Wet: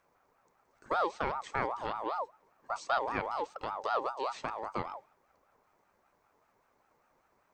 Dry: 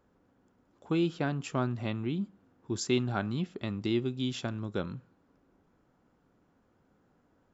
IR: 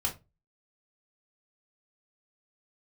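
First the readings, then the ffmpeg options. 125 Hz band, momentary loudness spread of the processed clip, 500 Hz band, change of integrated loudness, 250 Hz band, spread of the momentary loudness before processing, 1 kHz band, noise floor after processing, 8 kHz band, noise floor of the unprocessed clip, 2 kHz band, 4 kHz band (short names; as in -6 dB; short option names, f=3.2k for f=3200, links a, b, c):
-17.5 dB, 8 LU, -1.5 dB, -2.5 dB, -15.5 dB, 8 LU, +9.5 dB, -73 dBFS, n/a, -70 dBFS, +2.0 dB, -7.5 dB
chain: -filter_complex "[0:a]aexciter=amount=2.4:drive=4.8:freq=4.6k,acrossover=split=2900[a][b];[b]acompressor=threshold=-50dB:ratio=4:attack=1:release=60[c];[a][c]amix=inputs=2:normalize=0,aeval=exprs='val(0)*sin(2*PI*870*n/s+870*0.25/5.1*sin(2*PI*5.1*n/s))':c=same"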